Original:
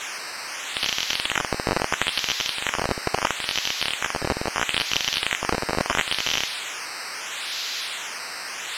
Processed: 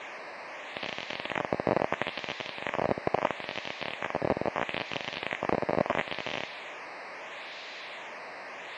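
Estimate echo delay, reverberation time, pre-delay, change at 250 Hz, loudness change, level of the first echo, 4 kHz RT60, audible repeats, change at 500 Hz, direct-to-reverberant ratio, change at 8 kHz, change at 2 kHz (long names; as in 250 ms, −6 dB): no echo audible, no reverb audible, no reverb audible, −2.0 dB, −8.5 dB, no echo audible, no reverb audible, no echo audible, +0.5 dB, no reverb audible, −25.5 dB, −9.0 dB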